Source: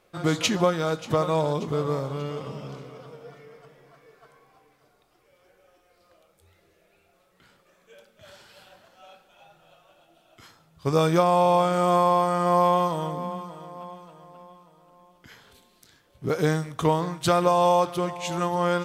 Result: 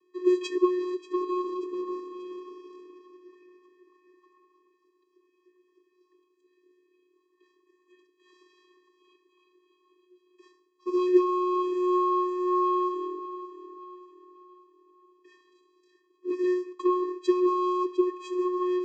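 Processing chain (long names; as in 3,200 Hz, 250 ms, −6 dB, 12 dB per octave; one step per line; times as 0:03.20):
channel vocoder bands 16, square 362 Hz
level −3 dB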